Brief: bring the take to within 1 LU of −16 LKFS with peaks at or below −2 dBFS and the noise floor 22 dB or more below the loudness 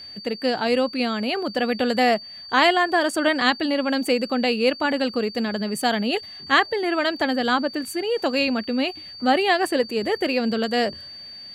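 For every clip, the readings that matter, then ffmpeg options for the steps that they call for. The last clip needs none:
interfering tone 4,600 Hz; level of the tone −37 dBFS; integrated loudness −22.0 LKFS; sample peak −3.5 dBFS; target loudness −16.0 LKFS
→ -af "bandreject=frequency=4600:width=30"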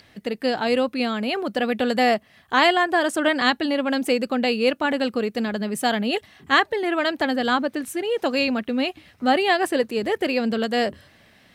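interfering tone none found; integrated loudness −22.5 LKFS; sample peak −3.5 dBFS; target loudness −16.0 LKFS
→ -af "volume=6.5dB,alimiter=limit=-2dB:level=0:latency=1"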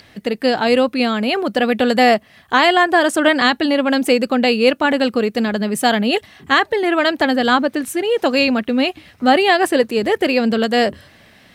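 integrated loudness −16.5 LKFS; sample peak −2.0 dBFS; background noise floor −49 dBFS

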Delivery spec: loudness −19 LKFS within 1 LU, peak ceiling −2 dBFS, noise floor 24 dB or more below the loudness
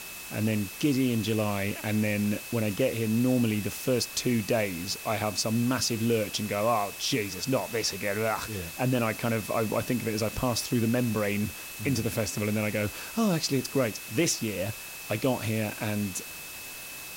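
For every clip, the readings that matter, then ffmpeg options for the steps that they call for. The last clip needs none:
interfering tone 2,600 Hz; level of the tone −44 dBFS; background noise floor −41 dBFS; target noise floor −53 dBFS; integrated loudness −28.5 LKFS; sample peak −14.5 dBFS; target loudness −19.0 LKFS
→ -af "bandreject=frequency=2600:width=30"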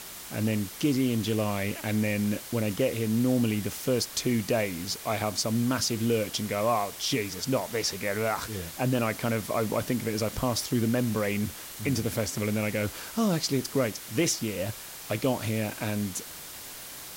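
interfering tone none found; background noise floor −42 dBFS; target noise floor −53 dBFS
→ -af "afftdn=noise_reduction=11:noise_floor=-42"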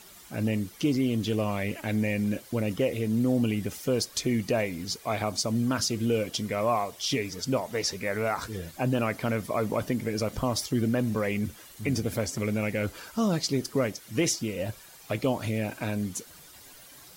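background noise floor −51 dBFS; target noise floor −53 dBFS
→ -af "afftdn=noise_reduction=6:noise_floor=-51"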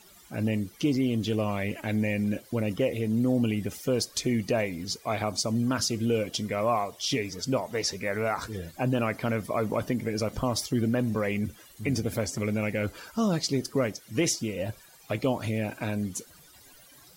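background noise floor −54 dBFS; integrated loudness −29.0 LKFS; sample peak −15.0 dBFS; target loudness −19.0 LKFS
→ -af "volume=10dB"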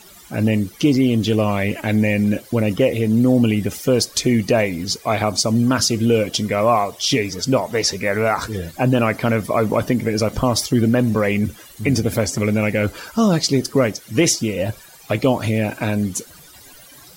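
integrated loudness −19.0 LKFS; sample peak −5.0 dBFS; background noise floor −44 dBFS

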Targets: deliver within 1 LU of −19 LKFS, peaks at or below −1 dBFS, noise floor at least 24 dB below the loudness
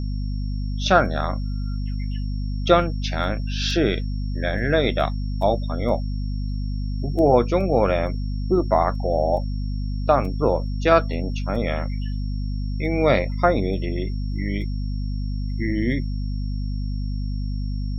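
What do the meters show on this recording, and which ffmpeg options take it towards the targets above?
mains hum 50 Hz; hum harmonics up to 250 Hz; level of the hum −23 dBFS; interfering tone 5,500 Hz; level of the tone −48 dBFS; integrated loudness −23.5 LKFS; sample peak −2.5 dBFS; target loudness −19.0 LKFS
→ -af "bandreject=frequency=50:width_type=h:width=4,bandreject=frequency=100:width_type=h:width=4,bandreject=frequency=150:width_type=h:width=4,bandreject=frequency=200:width_type=h:width=4,bandreject=frequency=250:width_type=h:width=4"
-af "bandreject=frequency=5500:width=30"
-af "volume=4.5dB,alimiter=limit=-1dB:level=0:latency=1"

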